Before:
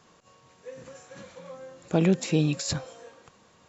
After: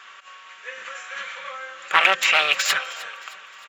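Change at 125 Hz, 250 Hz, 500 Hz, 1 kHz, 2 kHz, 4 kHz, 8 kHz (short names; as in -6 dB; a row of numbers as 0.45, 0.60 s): under -25 dB, -22.5 dB, -2.0 dB, +17.5 dB, +21.5 dB, +15.0 dB, n/a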